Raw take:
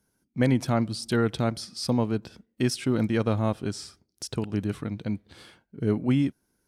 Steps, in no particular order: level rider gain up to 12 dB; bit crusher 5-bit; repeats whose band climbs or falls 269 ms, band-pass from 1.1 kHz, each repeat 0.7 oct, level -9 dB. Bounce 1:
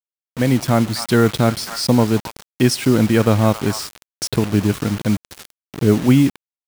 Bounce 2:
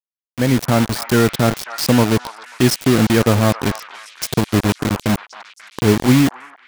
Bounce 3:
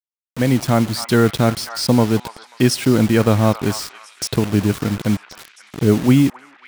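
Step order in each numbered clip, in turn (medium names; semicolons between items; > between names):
repeats whose band climbs or falls > level rider > bit crusher; bit crusher > repeats whose band climbs or falls > level rider; level rider > bit crusher > repeats whose band climbs or falls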